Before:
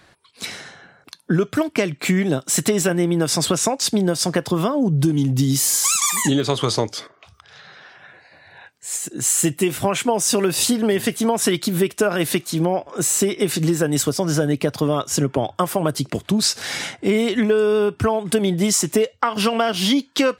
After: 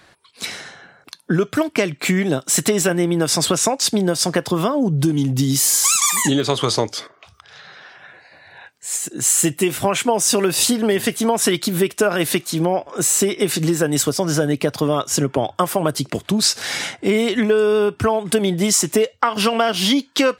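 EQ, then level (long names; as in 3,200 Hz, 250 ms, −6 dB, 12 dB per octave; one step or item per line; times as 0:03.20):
low-shelf EQ 270 Hz −4 dB
+2.5 dB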